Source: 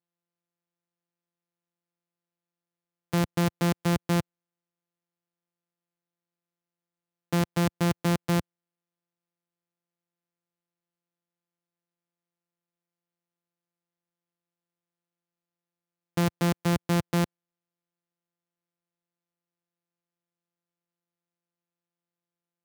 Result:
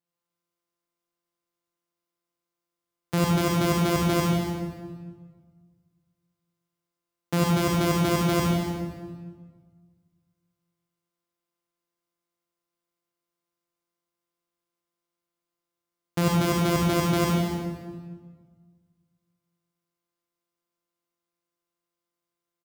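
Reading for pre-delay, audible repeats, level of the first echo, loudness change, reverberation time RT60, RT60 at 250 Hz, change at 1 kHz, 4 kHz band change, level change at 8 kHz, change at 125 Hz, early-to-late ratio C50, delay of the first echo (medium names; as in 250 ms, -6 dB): 37 ms, 1, -10.5 dB, +2.5 dB, 1.6 s, 2.0 s, +5.5 dB, +5.5 dB, +5.0 dB, +3.0 dB, -3.0 dB, 235 ms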